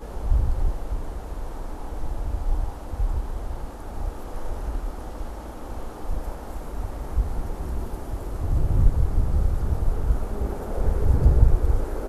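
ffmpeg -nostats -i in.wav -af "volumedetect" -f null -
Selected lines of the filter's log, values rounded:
mean_volume: -22.8 dB
max_volume: -1.6 dB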